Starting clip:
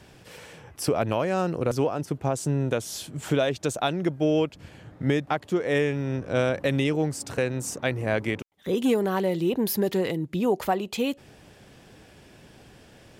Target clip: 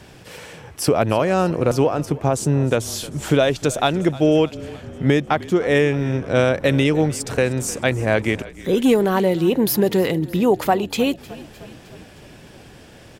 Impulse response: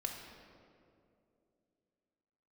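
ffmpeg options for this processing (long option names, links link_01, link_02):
-filter_complex "[0:a]asplit=7[link_01][link_02][link_03][link_04][link_05][link_06][link_07];[link_02]adelay=307,afreqshift=-32,volume=-19dB[link_08];[link_03]adelay=614,afreqshift=-64,volume=-23.2dB[link_09];[link_04]adelay=921,afreqshift=-96,volume=-27.3dB[link_10];[link_05]adelay=1228,afreqshift=-128,volume=-31.5dB[link_11];[link_06]adelay=1535,afreqshift=-160,volume=-35.6dB[link_12];[link_07]adelay=1842,afreqshift=-192,volume=-39.8dB[link_13];[link_01][link_08][link_09][link_10][link_11][link_12][link_13]amix=inputs=7:normalize=0,volume=7dB"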